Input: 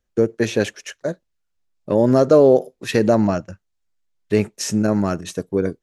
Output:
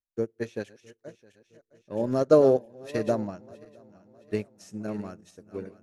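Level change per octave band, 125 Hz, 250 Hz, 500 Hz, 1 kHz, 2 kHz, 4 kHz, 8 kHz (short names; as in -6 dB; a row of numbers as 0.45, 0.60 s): -12.5 dB, -12.0 dB, -8.5 dB, -10.0 dB, -14.5 dB, under -15 dB, under -15 dB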